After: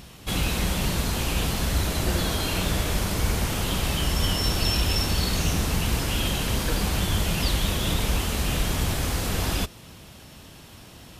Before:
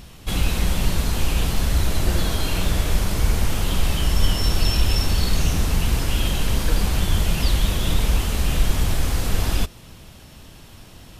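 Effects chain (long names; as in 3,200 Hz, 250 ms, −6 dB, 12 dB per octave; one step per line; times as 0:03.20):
high-pass filter 88 Hz 6 dB per octave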